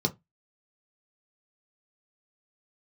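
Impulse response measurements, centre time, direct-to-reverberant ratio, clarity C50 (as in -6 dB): 6 ms, 2.0 dB, 22.0 dB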